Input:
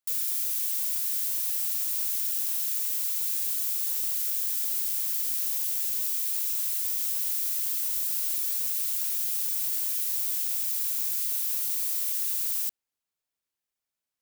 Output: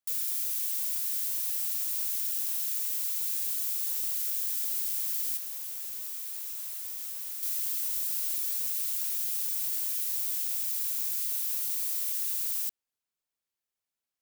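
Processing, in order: 5.37–7.43 s: tilt shelf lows +6.5 dB; trim -2.5 dB

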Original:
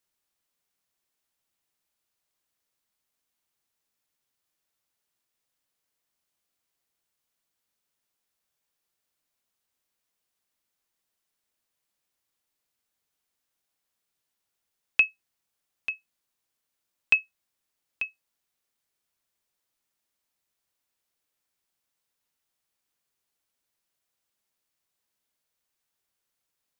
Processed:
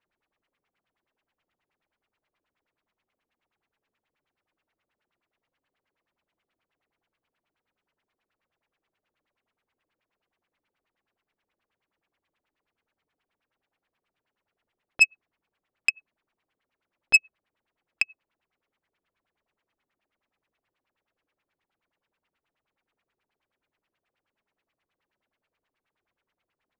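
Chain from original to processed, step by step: LFO low-pass sine 9.4 Hz 330–2800 Hz; transformer saturation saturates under 3.2 kHz; trim +5.5 dB

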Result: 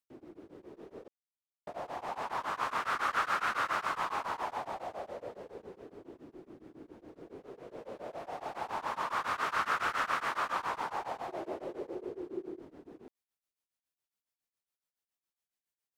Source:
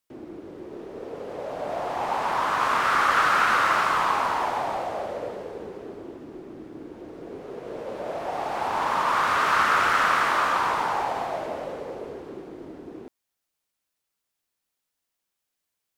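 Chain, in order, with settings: 1.08–1.67 s: mute; 11.28–12.60 s: peaking EQ 360 Hz +14.5 dB 0.41 oct; tremolo of two beating tones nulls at 7.2 Hz; trim -8.5 dB

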